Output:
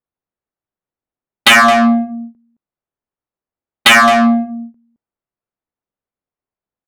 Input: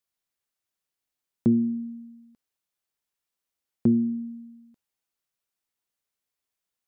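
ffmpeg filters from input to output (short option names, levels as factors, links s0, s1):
-filter_complex "[0:a]aresample=11025,aeval=exprs='0.224*sin(PI/2*10*val(0)/0.224)':c=same,aresample=44100,agate=range=0.0631:threshold=0.1:ratio=16:detection=peak,tiltshelf=f=800:g=-5.5,asplit=2[s0][s1];[s1]acompressor=threshold=0.0501:ratio=6,volume=1.26[s2];[s0][s2]amix=inputs=2:normalize=0,aecho=1:1:217:0.282,adynamicsmooth=sensitivity=1:basefreq=630,volume=1.78"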